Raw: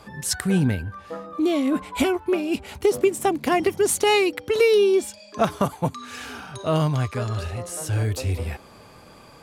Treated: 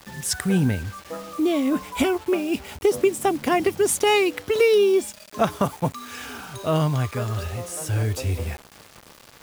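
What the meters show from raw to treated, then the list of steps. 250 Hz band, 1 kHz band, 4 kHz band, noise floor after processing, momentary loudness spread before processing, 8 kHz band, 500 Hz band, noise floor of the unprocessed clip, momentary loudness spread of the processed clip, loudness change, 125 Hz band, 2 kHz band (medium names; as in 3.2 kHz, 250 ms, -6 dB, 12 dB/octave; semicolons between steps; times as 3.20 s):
0.0 dB, 0.0 dB, -0.5 dB, -49 dBFS, 15 LU, 0.0 dB, 0.0 dB, -48 dBFS, 15 LU, 0.0 dB, 0.0 dB, 0.0 dB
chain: band-stop 4.2 kHz, Q 13; bit crusher 7-bit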